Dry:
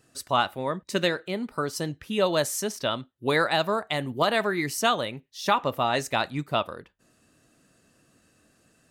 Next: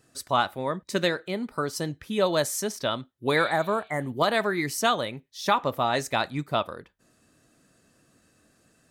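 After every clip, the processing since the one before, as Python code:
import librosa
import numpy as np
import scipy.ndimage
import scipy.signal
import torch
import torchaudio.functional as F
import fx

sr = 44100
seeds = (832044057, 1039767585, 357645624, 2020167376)

y = fx.notch(x, sr, hz=2800.0, q=13.0)
y = fx.spec_repair(y, sr, seeds[0], start_s=3.4, length_s=0.63, low_hz=2200.0, high_hz=5300.0, source='both')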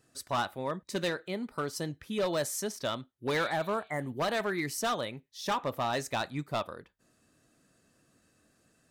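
y = np.clip(x, -10.0 ** (-20.0 / 20.0), 10.0 ** (-20.0 / 20.0))
y = y * 10.0 ** (-5.0 / 20.0)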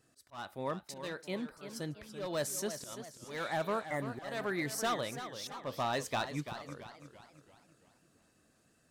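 y = fx.auto_swell(x, sr, attack_ms=330.0)
y = fx.echo_warbled(y, sr, ms=336, feedback_pct=46, rate_hz=2.8, cents=122, wet_db=-10.5)
y = y * 10.0 ** (-2.5 / 20.0)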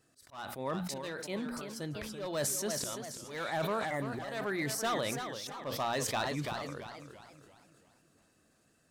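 y = fx.hum_notches(x, sr, base_hz=60, count=4)
y = fx.sustainer(y, sr, db_per_s=24.0)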